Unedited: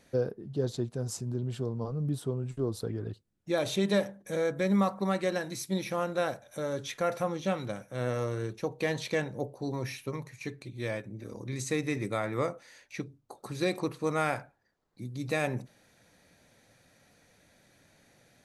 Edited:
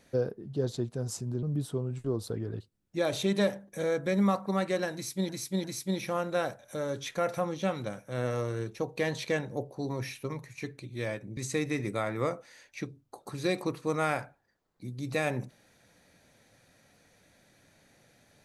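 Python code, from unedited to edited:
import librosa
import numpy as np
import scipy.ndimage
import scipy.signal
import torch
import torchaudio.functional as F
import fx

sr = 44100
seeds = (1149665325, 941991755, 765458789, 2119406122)

y = fx.edit(x, sr, fx.cut(start_s=1.43, length_s=0.53),
    fx.repeat(start_s=5.47, length_s=0.35, count=3),
    fx.cut(start_s=11.2, length_s=0.34), tone=tone)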